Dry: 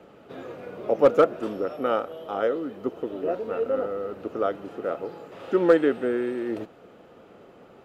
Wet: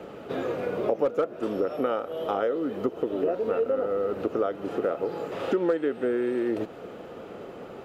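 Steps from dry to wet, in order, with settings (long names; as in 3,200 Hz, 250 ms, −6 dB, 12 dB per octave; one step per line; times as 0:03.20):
downward compressor 6 to 1, threshold −33 dBFS, peak gain reduction 19.5 dB
parametric band 440 Hz +2.5 dB 0.83 octaves
level +8 dB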